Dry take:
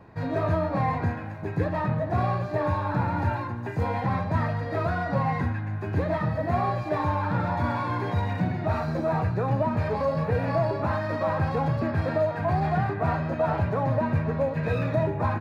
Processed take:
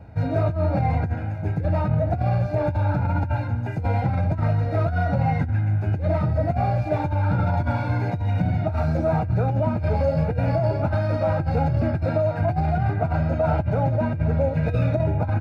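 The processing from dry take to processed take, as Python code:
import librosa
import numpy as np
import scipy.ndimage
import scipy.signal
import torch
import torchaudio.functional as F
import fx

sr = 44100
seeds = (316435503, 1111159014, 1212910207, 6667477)

y = fx.peak_eq(x, sr, hz=70.0, db=15.0, octaves=1.2)
y = y + 0.97 * np.pad(y, (int(1.4 * sr / 1000.0), 0))[:len(y)]
y = fx.over_compress(y, sr, threshold_db=-17.0, ratio=-1.0)
y = fx.small_body(y, sr, hz=(340.0, 2500.0), ring_ms=40, db=16)
y = y * librosa.db_to_amplitude(-5.0)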